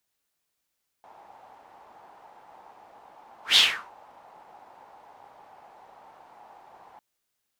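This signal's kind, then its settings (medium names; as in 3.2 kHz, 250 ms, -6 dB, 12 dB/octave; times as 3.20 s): whoosh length 5.95 s, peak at 2.52 s, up 0.14 s, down 0.38 s, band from 830 Hz, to 3.5 kHz, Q 4.8, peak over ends 35 dB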